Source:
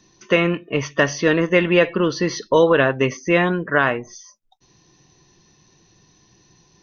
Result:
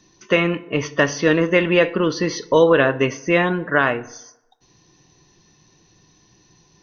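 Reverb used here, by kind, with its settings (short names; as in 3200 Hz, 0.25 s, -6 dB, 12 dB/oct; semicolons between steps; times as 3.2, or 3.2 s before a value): FDN reverb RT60 0.93 s, low-frequency decay 0.85×, high-frequency decay 0.6×, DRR 14.5 dB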